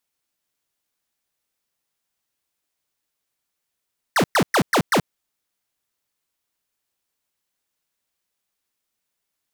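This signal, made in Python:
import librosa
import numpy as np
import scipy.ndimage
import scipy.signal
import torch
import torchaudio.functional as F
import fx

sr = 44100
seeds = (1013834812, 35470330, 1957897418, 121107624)

y = fx.laser_zaps(sr, level_db=-16.5, start_hz=2100.0, end_hz=120.0, length_s=0.08, wave='square', shots=5, gap_s=0.11)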